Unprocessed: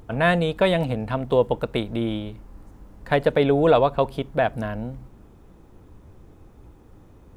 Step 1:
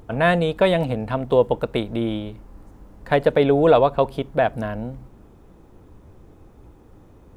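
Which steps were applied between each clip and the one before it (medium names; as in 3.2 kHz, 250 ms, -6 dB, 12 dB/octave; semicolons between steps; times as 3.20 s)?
peaking EQ 520 Hz +2.5 dB 2.3 oct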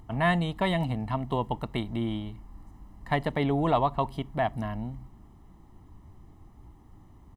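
comb 1 ms, depth 76%; trim -7.5 dB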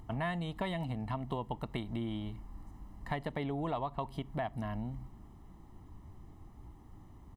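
compression 4:1, threshold -33 dBFS, peak gain reduction 12 dB; trim -1 dB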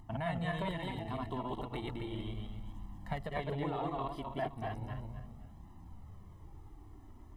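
backward echo that repeats 130 ms, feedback 52%, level 0 dB; flange 0.35 Hz, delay 1 ms, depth 2.1 ms, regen -36%; hum notches 60/120 Hz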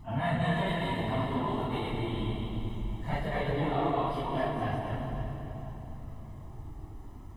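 phase randomisation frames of 100 ms; on a send at -2 dB: reverberation RT60 3.7 s, pre-delay 18 ms; on the sum: trim +5.5 dB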